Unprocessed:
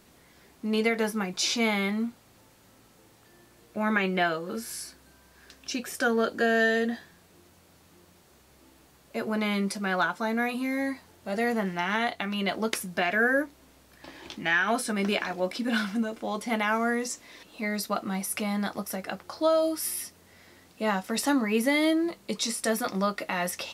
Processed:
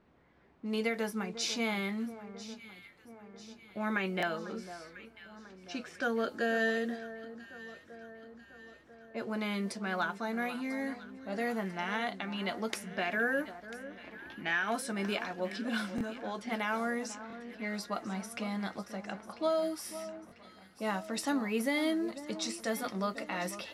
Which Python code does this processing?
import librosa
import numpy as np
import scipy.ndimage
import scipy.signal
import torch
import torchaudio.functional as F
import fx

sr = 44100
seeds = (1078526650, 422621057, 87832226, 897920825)

y = fx.env_lowpass(x, sr, base_hz=1800.0, full_db=-23.5)
y = fx.echo_alternate(y, sr, ms=497, hz=1500.0, feedback_pct=72, wet_db=-12.5)
y = fx.buffer_glitch(y, sr, at_s=(4.18, 15.96, 17.28, 20.27), block=1024, repeats=1)
y = F.gain(torch.from_numpy(y), -7.0).numpy()